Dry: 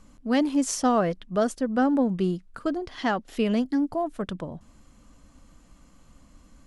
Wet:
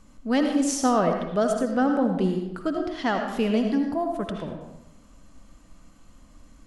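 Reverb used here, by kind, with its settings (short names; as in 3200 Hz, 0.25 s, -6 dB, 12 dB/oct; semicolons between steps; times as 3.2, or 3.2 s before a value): digital reverb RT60 0.9 s, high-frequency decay 0.7×, pre-delay 40 ms, DRR 3.5 dB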